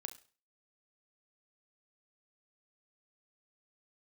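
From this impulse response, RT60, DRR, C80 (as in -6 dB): no single decay rate, 7.5 dB, 18.5 dB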